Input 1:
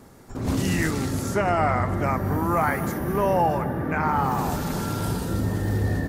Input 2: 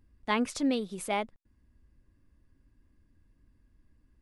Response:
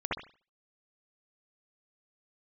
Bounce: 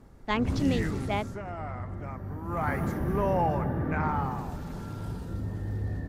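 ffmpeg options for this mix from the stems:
-filter_complex "[0:a]lowshelf=f=130:g=3.5,acontrast=79,aemphasis=mode=reproduction:type=cd,volume=-5dB,afade=t=out:st=0.94:d=0.45:silence=0.421697,afade=t=in:st=2.43:d=0.3:silence=0.281838,afade=t=out:st=4.03:d=0.44:silence=0.398107[a];[1:a]afwtdn=0.00562,volume=-0.5dB[b];[a][b]amix=inputs=2:normalize=0,lowshelf=f=98:g=7.5"

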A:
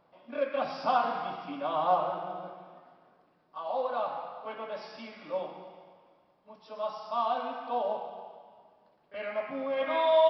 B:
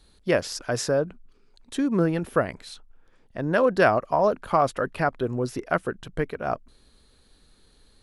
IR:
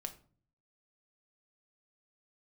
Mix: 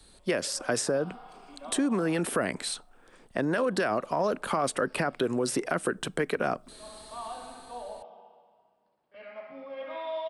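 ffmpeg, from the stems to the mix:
-filter_complex "[0:a]volume=-10dB,asplit=2[a][b];[b]volume=-9.5dB[c];[1:a]dynaudnorm=f=270:g=7:m=11.5dB,alimiter=limit=-14.5dB:level=0:latency=1:release=57,volume=2dB,asplit=3[d][e][f];[e]volume=-15.5dB[g];[f]apad=whole_len=454021[h];[a][h]sidechaincompress=threshold=-32dB:ratio=8:attack=16:release=554[i];[2:a]atrim=start_sample=2205[j];[g][j]afir=irnorm=-1:irlink=0[k];[c]aecho=0:1:62|124|186|248|310|372|434|496:1|0.56|0.314|0.176|0.0983|0.0551|0.0308|0.0173[l];[i][d][k][l]amix=inputs=4:normalize=0,equalizer=f=8.5k:t=o:w=0.24:g=12.5,acrossover=split=170|460|1300[m][n][o][p];[m]acompressor=threshold=-58dB:ratio=4[q];[n]acompressor=threshold=-28dB:ratio=4[r];[o]acompressor=threshold=-34dB:ratio=4[s];[p]acompressor=threshold=-31dB:ratio=4[t];[q][r][s][t]amix=inputs=4:normalize=0"

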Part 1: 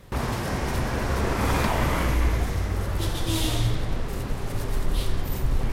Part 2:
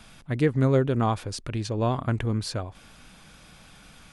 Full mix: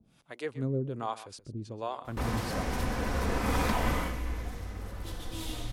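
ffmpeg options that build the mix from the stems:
-filter_complex "[0:a]aecho=1:1:4:0.37,adelay=2050,volume=-5.5dB,afade=t=out:st=3.93:d=0.21:silence=0.421697[a];[1:a]highpass=f=150:p=1,equalizer=f=1.8k:w=1.5:g=-3.5,acrossover=split=440[b][c];[b]aeval=exprs='val(0)*(1-1/2+1/2*cos(2*PI*1.3*n/s))':c=same[d];[c]aeval=exprs='val(0)*(1-1/2-1/2*cos(2*PI*1.3*n/s))':c=same[e];[d][e]amix=inputs=2:normalize=0,volume=-5dB,asplit=2[f][g];[g]volume=-15.5dB,aecho=0:1:128:1[h];[a][f][h]amix=inputs=3:normalize=0"

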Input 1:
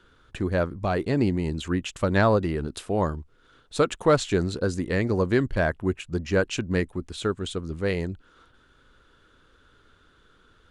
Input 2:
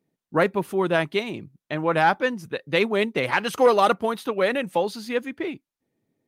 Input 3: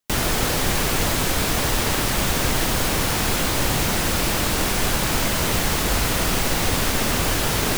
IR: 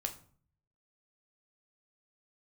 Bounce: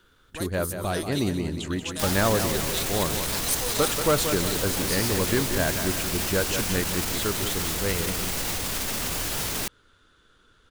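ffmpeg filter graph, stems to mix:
-filter_complex "[0:a]volume=-3.5dB,asplit=2[a][b];[b]volume=-8.5dB[c];[1:a]aexciter=amount=13.6:drive=5.4:freq=3.8k,volume=-19.5dB,asplit=2[d][e];[e]volume=-12.5dB[f];[2:a]alimiter=limit=-15dB:level=0:latency=1:release=32,adelay=1900,volume=-7.5dB[g];[c][f]amix=inputs=2:normalize=0,aecho=0:1:182|364|546|728|910|1092|1274:1|0.5|0.25|0.125|0.0625|0.0312|0.0156[h];[a][d][g][h]amix=inputs=4:normalize=0,highshelf=f=3.2k:g=7.5"

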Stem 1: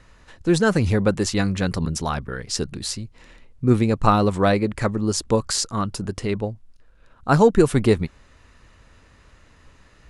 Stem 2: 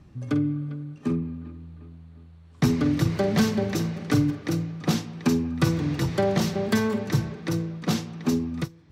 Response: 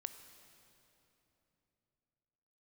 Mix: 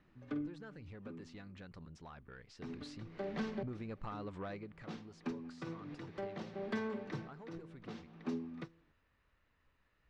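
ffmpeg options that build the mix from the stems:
-filter_complex "[0:a]tiltshelf=f=970:g=-3,acompressor=threshold=-26dB:ratio=12,asoftclip=type=tanh:threshold=-23.5dB,volume=-12dB,afade=t=in:st=2.51:d=0.55:silence=0.421697,afade=t=out:st=4.54:d=0.24:silence=0.316228,asplit=2[a][b];[1:a]highpass=220,volume=-13dB[c];[b]apad=whole_len=393161[d];[c][d]sidechaincompress=threshold=-57dB:ratio=10:attack=11:release=252[e];[a][e]amix=inputs=2:normalize=0,lowpass=3k"

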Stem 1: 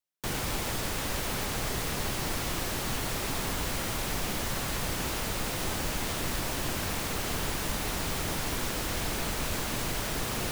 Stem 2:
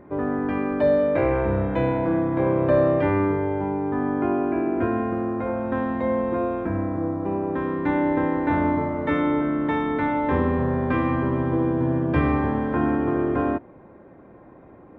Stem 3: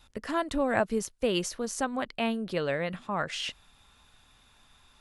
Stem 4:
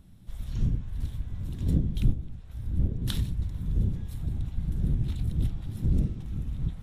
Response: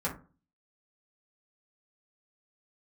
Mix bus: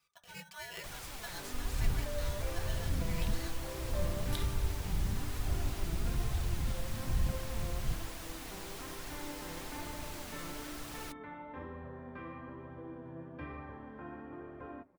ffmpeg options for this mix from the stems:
-filter_complex "[0:a]adelay=600,volume=-8.5dB[a];[1:a]adelay=1250,volume=-16dB,asplit=2[b][c];[c]volume=-22dB[d];[2:a]lowshelf=f=490:g=-11,aecho=1:1:3.7:0.74,aeval=exprs='val(0)*sgn(sin(2*PI*1200*n/s))':c=same,volume=-13.5dB,asplit=2[e][f];[f]volume=-13dB[g];[3:a]alimiter=limit=-21dB:level=0:latency=1:release=152,adelay=1250,volume=2dB[h];[4:a]atrim=start_sample=2205[i];[d][g]amix=inputs=2:normalize=0[j];[j][i]afir=irnorm=-1:irlink=0[k];[a][b][e][h][k]amix=inputs=5:normalize=0,equalizer=f=260:w=0.57:g=-5.5,flanger=delay=1.1:depth=5:regen=59:speed=1.1:shape=triangular"

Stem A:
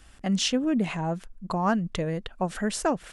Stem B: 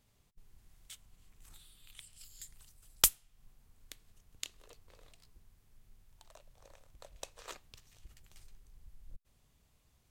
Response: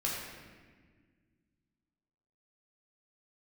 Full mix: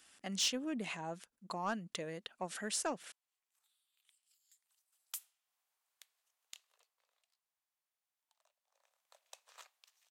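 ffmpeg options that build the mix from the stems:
-filter_complex "[0:a]highpass=230,highshelf=f=2k:g=11,volume=-13dB[a];[1:a]highpass=f=670:w=0.5412,highpass=f=670:w=1.3066,alimiter=limit=-13.5dB:level=0:latency=1:release=76,adelay=2100,volume=-1.5dB,afade=t=in:st=4.59:d=0.69:silence=0.334965,afade=t=out:st=6.58:d=0.47:silence=0.446684,afade=t=in:st=8.72:d=0.41:silence=0.375837[b];[a][b]amix=inputs=2:normalize=0,asoftclip=type=tanh:threshold=-25dB"

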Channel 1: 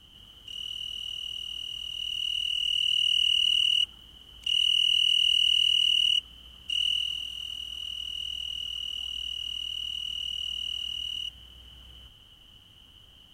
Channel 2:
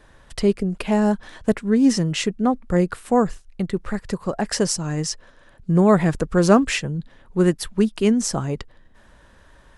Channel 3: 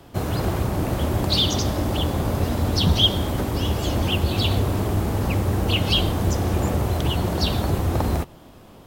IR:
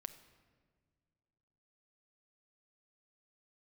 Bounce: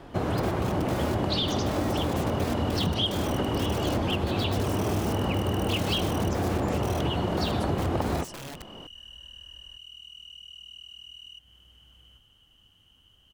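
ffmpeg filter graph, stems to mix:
-filter_complex "[0:a]adelay=100,volume=-7dB[a];[1:a]equalizer=f=62:w=0.62:g=12,dynaudnorm=f=130:g=21:m=9.5dB,alimiter=limit=-8.5dB:level=0:latency=1:release=238,volume=-7.5dB[b];[2:a]highpass=f=170:p=1,aemphasis=mode=reproduction:type=75fm,acompressor=threshold=-25dB:ratio=6,volume=2dB[c];[a][b]amix=inputs=2:normalize=0,aeval=exprs='(mod(15*val(0)+1,2)-1)/15':c=same,acompressor=threshold=-46dB:ratio=2.5,volume=0dB[d];[c][d]amix=inputs=2:normalize=0"

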